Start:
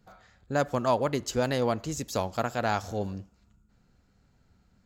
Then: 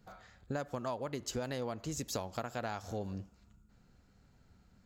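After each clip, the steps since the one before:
downward compressor 12 to 1, threshold −34 dBFS, peak gain reduction 15 dB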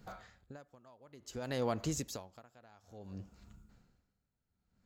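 tremolo with a sine in dB 0.57 Hz, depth 28 dB
level +5.5 dB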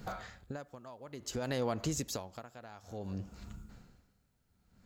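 downward compressor 2 to 1, threshold −48 dBFS, peak gain reduction 10.5 dB
level +10 dB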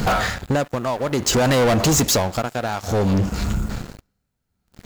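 leveller curve on the samples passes 5
level +9 dB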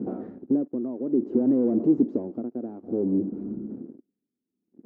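flat-topped band-pass 300 Hz, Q 2.1
level +3 dB

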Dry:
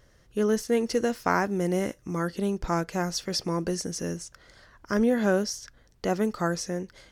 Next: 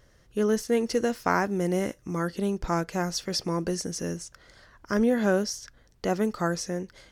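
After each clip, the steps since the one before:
no processing that can be heard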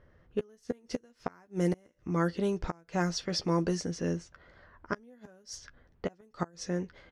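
low-pass that shuts in the quiet parts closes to 1,800 Hz, open at −19.5 dBFS
gate with flip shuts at −17 dBFS, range −32 dB
double-tracking delay 12 ms −9 dB
level −1.5 dB

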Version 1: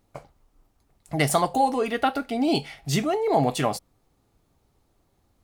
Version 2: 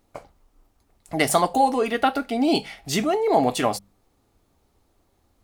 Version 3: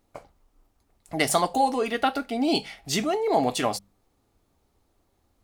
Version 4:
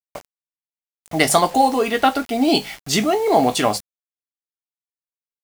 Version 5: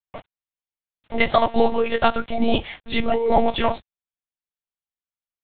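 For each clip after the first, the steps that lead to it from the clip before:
parametric band 140 Hz −14 dB 0.21 octaves; mains-hum notches 50/100/150/200 Hz; level +2.5 dB
dynamic equaliser 5,000 Hz, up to +4 dB, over −37 dBFS, Q 0.7; level −3.5 dB
in parallel at −8.5 dB: floating-point word with a short mantissa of 2 bits; on the sum: double-tracking delay 19 ms −12 dB; bit reduction 7 bits; level +4 dB
one-pitch LPC vocoder at 8 kHz 230 Hz; level −1.5 dB

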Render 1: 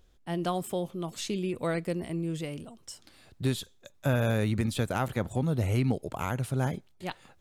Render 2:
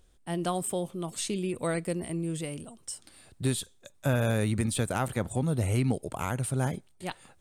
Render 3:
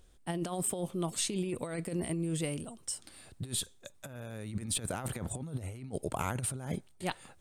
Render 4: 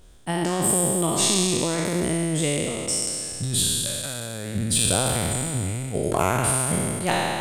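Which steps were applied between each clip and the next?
parametric band 8,800 Hz +14 dB 0.29 octaves
compressor whose output falls as the input rises −32 dBFS, ratio −0.5; level −2.5 dB
peak hold with a decay on every bin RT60 2.45 s; level +7.5 dB

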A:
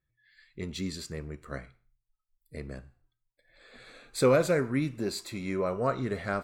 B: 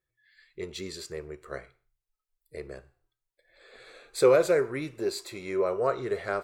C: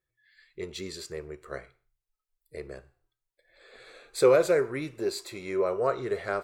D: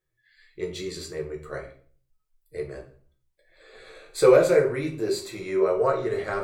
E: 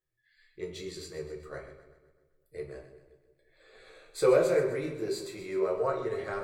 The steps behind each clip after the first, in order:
low shelf with overshoot 310 Hz −6.5 dB, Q 3
no processing that can be heard
rectangular room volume 33 cubic metres, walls mixed, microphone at 0.55 metres
echo with a time of its own for lows and highs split 480 Hz, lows 173 ms, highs 128 ms, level −12 dB; level −7 dB

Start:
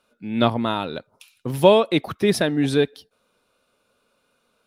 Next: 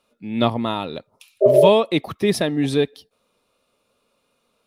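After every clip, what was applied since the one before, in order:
notch filter 1,500 Hz, Q 5.7
healed spectral selection 0:01.44–0:01.65, 340–750 Hz after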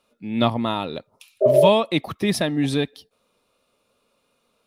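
dynamic equaliser 420 Hz, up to −7 dB, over −30 dBFS, Q 2.8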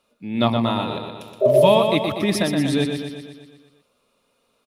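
repeating echo 121 ms, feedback 59%, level −6 dB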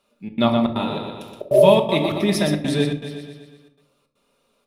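gate pattern "xxx.xxx.xxxx" 159 BPM −60 dB
rectangular room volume 710 cubic metres, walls furnished, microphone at 1.2 metres
level −1 dB

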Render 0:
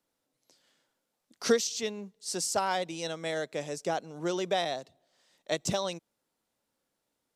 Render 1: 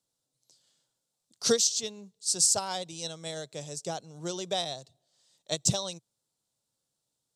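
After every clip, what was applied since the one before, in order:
octave-band graphic EQ 125/250/2,000/4,000/8,000 Hz +12/−4/−7/+7/+11 dB
expander for the loud parts 1.5 to 1, over −33 dBFS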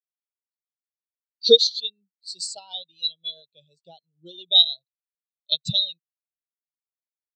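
flat-topped bell 3,300 Hz +14.5 dB 1.1 octaves
every bin expanded away from the loudest bin 2.5 to 1
level +1.5 dB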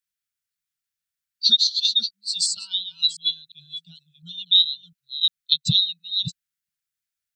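delay that plays each chunk backwards 352 ms, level −10.5 dB
elliptic band-stop filter 180–1,400 Hz, stop band 40 dB
downward compressor 3 to 1, threshold −25 dBFS, peak gain reduction 11 dB
level +9 dB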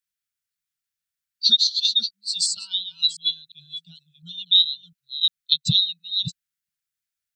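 no processing that can be heard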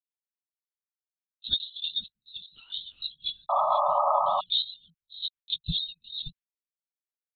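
linear-prediction vocoder at 8 kHz whisper
noise gate with hold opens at −53 dBFS
sound drawn into the spectrogram noise, 0:03.49–0:04.41, 560–1,300 Hz −16 dBFS
level −8 dB

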